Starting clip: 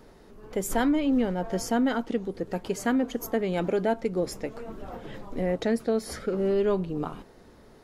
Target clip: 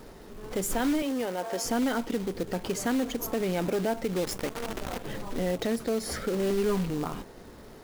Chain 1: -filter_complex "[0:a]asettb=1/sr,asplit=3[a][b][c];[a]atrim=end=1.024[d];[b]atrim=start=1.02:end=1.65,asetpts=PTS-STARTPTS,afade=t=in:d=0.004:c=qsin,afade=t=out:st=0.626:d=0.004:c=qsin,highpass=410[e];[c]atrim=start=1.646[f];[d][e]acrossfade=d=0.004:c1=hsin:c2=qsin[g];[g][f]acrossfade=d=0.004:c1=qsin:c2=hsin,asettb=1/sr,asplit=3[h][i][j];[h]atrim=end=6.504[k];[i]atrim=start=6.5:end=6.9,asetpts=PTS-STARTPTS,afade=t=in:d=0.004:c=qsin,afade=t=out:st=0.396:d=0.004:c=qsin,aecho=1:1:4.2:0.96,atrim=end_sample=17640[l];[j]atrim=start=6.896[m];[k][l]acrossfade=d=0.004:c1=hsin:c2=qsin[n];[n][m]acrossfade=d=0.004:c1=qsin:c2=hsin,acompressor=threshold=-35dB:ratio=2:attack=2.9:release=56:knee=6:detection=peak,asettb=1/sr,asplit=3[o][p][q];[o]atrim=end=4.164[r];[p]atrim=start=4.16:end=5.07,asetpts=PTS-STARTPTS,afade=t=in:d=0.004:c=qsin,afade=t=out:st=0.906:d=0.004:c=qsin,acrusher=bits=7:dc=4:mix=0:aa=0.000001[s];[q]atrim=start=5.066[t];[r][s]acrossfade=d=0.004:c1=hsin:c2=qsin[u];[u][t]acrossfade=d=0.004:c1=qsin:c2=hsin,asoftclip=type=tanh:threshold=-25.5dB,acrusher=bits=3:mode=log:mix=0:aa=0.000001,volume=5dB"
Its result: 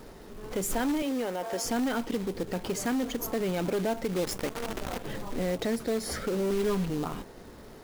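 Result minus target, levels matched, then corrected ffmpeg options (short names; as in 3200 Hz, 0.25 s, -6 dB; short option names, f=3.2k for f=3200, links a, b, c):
soft clip: distortion +10 dB
-filter_complex "[0:a]asettb=1/sr,asplit=3[a][b][c];[a]atrim=end=1.024[d];[b]atrim=start=1.02:end=1.65,asetpts=PTS-STARTPTS,afade=t=in:d=0.004:c=qsin,afade=t=out:st=0.626:d=0.004:c=qsin,highpass=410[e];[c]atrim=start=1.646[f];[d][e]acrossfade=d=0.004:c1=hsin:c2=qsin[g];[g][f]acrossfade=d=0.004:c1=qsin:c2=hsin,asettb=1/sr,asplit=3[h][i][j];[h]atrim=end=6.504[k];[i]atrim=start=6.5:end=6.9,asetpts=PTS-STARTPTS,afade=t=in:d=0.004:c=qsin,afade=t=out:st=0.396:d=0.004:c=qsin,aecho=1:1:4.2:0.96,atrim=end_sample=17640[l];[j]atrim=start=6.896[m];[k][l]acrossfade=d=0.004:c1=hsin:c2=qsin[n];[n][m]acrossfade=d=0.004:c1=qsin:c2=hsin,acompressor=threshold=-35dB:ratio=2:attack=2.9:release=56:knee=6:detection=peak,asettb=1/sr,asplit=3[o][p][q];[o]atrim=end=4.164[r];[p]atrim=start=4.16:end=5.07,asetpts=PTS-STARTPTS,afade=t=in:d=0.004:c=qsin,afade=t=out:st=0.906:d=0.004:c=qsin,acrusher=bits=7:dc=4:mix=0:aa=0.000001[s];[q]atrim=start=5.066[t];[r][s]acrossfade=d=0.004:c1=hsin:c2=qsin[u];[u][t]acrossfade=d=0.004:c1=qsin:c2=hsin,asoftclip=type=tanh:threshold=-19.5dB,acrusher=bits=3:mode=log:mix=0:aa=0.000001,volume=5dB"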